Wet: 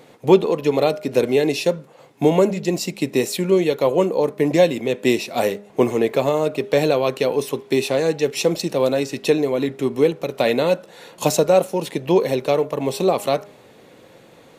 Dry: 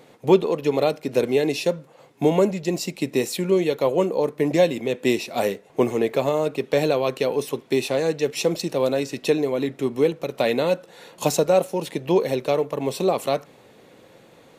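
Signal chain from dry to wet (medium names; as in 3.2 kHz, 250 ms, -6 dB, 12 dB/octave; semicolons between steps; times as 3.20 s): de-hum 203.7 Hz, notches 7; trim +3 dB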